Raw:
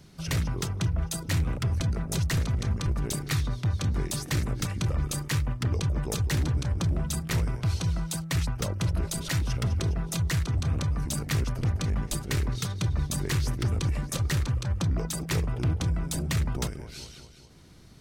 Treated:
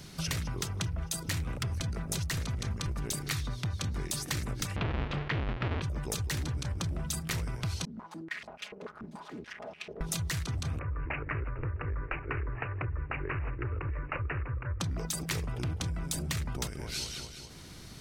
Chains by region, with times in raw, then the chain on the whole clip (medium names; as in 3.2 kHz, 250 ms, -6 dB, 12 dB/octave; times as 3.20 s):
4.76–5.82 s: square wave that keeps the level + low-pass 3.1 kHz 24 dB/octave
7.85–10.01 s: comb filter that takes the minimum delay 4.8 ms + overload inside the chain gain 30.5 dB + step-sequenced band-pass 6.9 Hz 240–2600 Hz
10.79–14.80 s: static phaser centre 750 Hz, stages 6 + careless resampling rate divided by 8×, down none, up filtered
whole clip: tilt shelf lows -3 dB, about 1.1 kHz; compression, threshold -38 dBFS; trim +6.5 dB